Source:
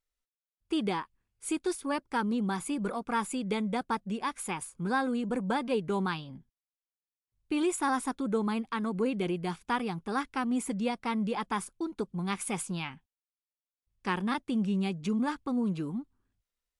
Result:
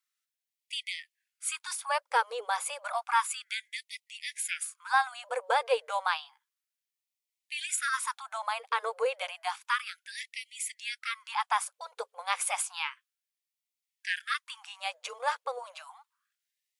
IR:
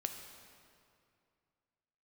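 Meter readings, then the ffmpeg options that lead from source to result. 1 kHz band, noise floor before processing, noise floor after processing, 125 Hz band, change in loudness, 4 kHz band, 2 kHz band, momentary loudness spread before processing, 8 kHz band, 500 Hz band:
+2.5 dB, under -85 dBFS, under -85 dBFS, under -40 dB, -0.5 dB, +5.5 dB, +5.0 dB, 6 LU, +5.5 dB, -2.5 dB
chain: -af "afftfilt=real='re*gte(b*sr/1024,430*pow(1900/430,0.5+0.5*sin(2*PI*0.31*pts/sr)))':imag='im*gte(b*sr/1024,430*pow(1900/430,0.5+0.5*sin(2*PI*0.31*pts/sr)))':win_size=1024:overlap=0.75,volume=1.88"

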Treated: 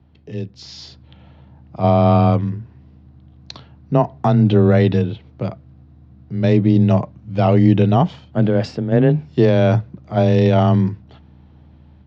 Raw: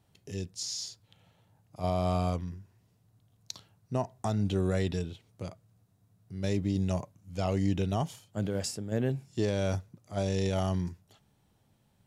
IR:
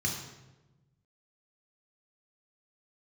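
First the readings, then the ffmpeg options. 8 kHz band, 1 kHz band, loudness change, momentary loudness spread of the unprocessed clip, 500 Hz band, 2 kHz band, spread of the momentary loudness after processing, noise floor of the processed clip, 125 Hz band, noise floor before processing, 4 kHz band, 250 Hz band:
no reading, +16.0 dB, +16.0 dB, 14 LU, +15.5 dB, +13.5 dB, 16 LU, -47 dBFS, +16.0 dB, -69 dBFS, +6.5 dB, +16.5 dB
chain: -af "aeval=exprs='val(0)+0.000891*(sin(2*PI*60*n/s)+sin(2*PI*2*60*n/s)/2+sin(2*PI*3*60*n/s)/3+sin(2*PI*4*60*n/s)/4+sin(2*PI*5*60*n/s)/5)':c=same,lowpass=f=4600:w=0.5412,lowpass=f=4600:w=1.3066,dynaudnorm=f=480:g=3:m=2.24,afreqshift=16,aemphasis=mode=reproduction:type=75fm,volume=2.51"

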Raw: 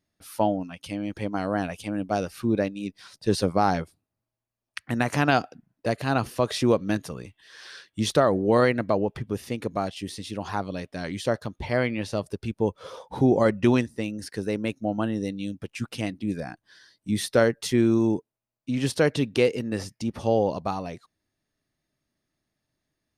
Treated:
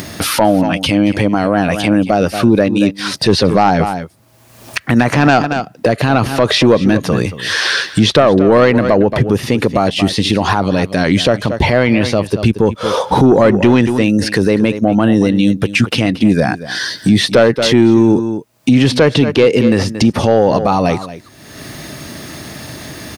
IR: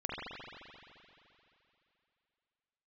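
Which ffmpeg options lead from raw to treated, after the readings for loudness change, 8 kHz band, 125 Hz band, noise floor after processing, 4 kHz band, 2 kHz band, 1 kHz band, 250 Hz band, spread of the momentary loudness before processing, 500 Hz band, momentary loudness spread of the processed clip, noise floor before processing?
+13.5 dB, +13.0 dB, +14.5 dB, -41 dBFS, +18.0 dB, +14.5 dB, +13.0 dB, +14.5 dB, 14 LU, +12.5 dB, 9 LU, -85 dBFS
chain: -filter_complex "[0:a]acrossover=split=4700[s0][s1];[s1]acompressor=threshold=0.002:ratio=4:attack=1:release=60[s2];[s0][s2]amix=inputs=2:normalize=0,highpass=72,acompressor=mode=upward:threshold=0.0501:ratio=2.5,aeval=exprs='0.447*sin(PI/2*1.41*val(0)/0.447)':c=same,aecho=1:1:228:0.158,alimiter=level_in=5.62:limit=0.891:release=50:level=0:latency=1,volume=0.891"

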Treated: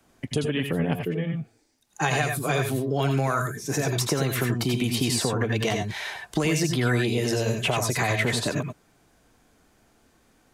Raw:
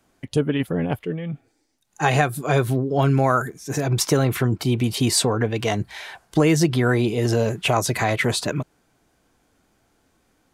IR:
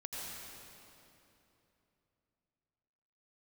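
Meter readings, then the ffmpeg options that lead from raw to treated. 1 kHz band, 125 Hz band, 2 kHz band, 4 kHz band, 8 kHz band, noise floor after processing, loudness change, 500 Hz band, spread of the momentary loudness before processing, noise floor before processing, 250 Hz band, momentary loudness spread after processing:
-5.0 dB, -4.0 dB, -1.0 dB, -1.5 dB, -3.0 dB, -63 dBFS, -4.0 dB, -4.5 dB, 9 LU, -66 dBFS, -4.5 dB, 7 LU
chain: -filter_complex "[0:a]acrossover=split=190|1900[s0][s1][s2];[s0]acompressor=threshold=0.02:ratio=4[s3];[s1]acompressor=threshold=0.0398:ratio=4[s4];[s2]acompressor=threshold=0.0316:ratio=4[s5];[s3][s4][s5]amix=inputs=3:normalize=0[s6];[1:a]atrim=start_sample=2205,atrim=end_sample=4410[s7];[s6][s7]afir=irnorm=-1:irlink=0,volume=2.37"

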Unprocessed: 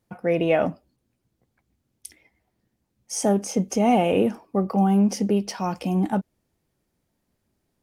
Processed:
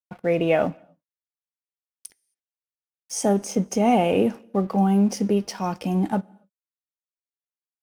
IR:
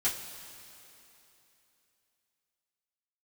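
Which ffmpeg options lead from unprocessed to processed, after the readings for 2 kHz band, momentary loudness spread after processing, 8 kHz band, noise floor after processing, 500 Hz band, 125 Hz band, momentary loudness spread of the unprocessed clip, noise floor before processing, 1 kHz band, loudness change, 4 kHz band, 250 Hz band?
0.0 dB, 9 LU, -0.5 dB, under -85 dBFS, +0.5 dB, 0.0 dB, 9 LU, -76 dBFS, 0.0 dB, 0.0 dB, 0.0 dB, 0.0 dB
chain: -filter_complex "[0:a]aeval=exprs='sgn(val(0))*max(abs(val(0))-0.00398,0)':c=same,asplit=2[s0][s1];[1:a]atrim=start_sample=2205,afade=t=out:st=0.33:d=0.01,atrim=end_sample=14994[s2];[s1][s2]afir=irnorm=-1:irlink=0,volume=0.0631[s3];[s0][s3]amix=inputs=2:normalize=0"

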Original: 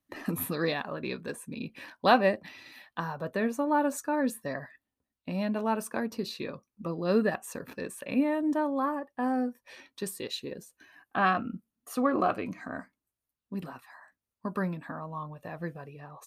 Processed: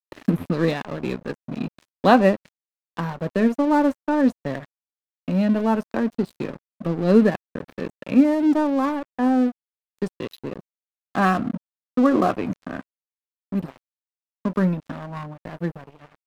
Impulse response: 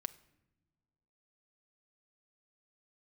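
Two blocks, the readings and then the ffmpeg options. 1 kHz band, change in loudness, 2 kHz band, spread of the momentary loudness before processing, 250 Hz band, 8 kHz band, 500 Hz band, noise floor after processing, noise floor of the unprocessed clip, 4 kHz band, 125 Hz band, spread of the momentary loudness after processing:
+5.0 dB, +9.0 dB, +3.5 dB, 15 LU, +11.0 dB, no reading, +7.5 dB, under -85 dBFS, under -85 dBFS, +1.0 dB, +11.0 dB, 17 LU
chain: -filter_complex "[0:a]equalizer=f=160:w=0.36:g=10,acrossover=split=190|4500[s0][s1][s2];[s2]acompressor=threshold=0.00158:ratio=12[s3];[s0][s1][s3]amix=inputs=3:normalize=0,aeval=exprs='sgn(val(0))*max(abs(val(0))-0.0158,0)':c=same,volume=1.5"

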